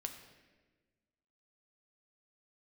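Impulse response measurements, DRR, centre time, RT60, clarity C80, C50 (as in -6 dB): 5.0 dB, 22 ms, 1.3 s, 9.5 dB, 8.5 dB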